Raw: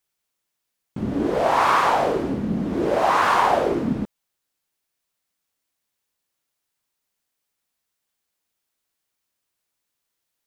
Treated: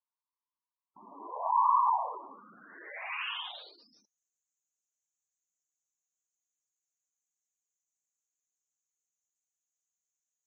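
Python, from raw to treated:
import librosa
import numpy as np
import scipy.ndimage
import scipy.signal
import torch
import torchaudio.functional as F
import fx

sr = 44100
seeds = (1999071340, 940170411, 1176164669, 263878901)

y = fx.filter_sweep_bandpass(x, sr, from_hz=1000.0, to_hz=6700.0, start_s=2.22, end_s=4.17, q=5.7)
y = fx.spec_gate(y, sr, threshold_db=-10, keep='strong')
y = fx.tilt_eq(y, sr, slope=2.0)
y = F.gain(torch.from_numpy(y), -2.0).numpy()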